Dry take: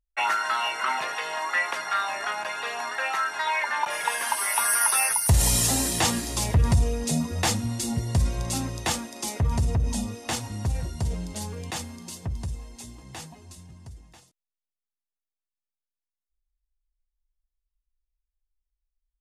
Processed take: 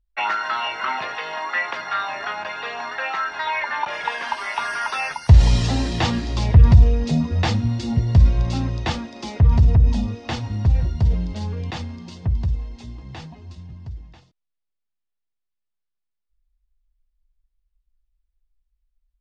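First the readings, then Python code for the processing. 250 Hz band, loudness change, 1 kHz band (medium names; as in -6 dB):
+5.5 dB, +4.5 dB, +2.0 dB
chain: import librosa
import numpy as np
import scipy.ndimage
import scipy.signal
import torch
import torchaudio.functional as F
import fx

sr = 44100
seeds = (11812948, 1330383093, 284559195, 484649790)

y = scipy.signal.sosfilt(scipy.signal.butter(4, 4700.0, 'lowpass', fs=sr, output='sos'), x)
y = fx.low_shelf(y, sr, hz=170.0, db=10.5)
y = y * librosa.db_to_amplitude(1.5)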